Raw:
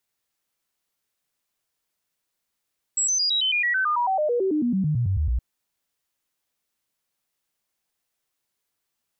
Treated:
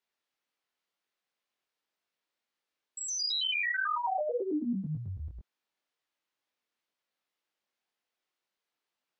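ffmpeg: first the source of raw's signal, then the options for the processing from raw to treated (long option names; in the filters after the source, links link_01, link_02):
-f lavfi -i "aevalsrc='0.106*clip(min(mod(t,0.11),0.11-mod(t,0.11))/0.005,0,1)*sin(2*PI*7710*pow(2,-floor(t/0.11)/3)*mod(t,0.11))':duration=2.42:sample_rate=44100"
-filter_complex "[0:a]acrossover=split=210 5000:gain=0.178 1 0.178[link_01][link_02][link_03];[link_01][link_02][link_03]amix=inputs=3:normalize=0,acompressor=threshold=-28dB:ratio=3,flanger=delay=19:depth=6.3:speed=2"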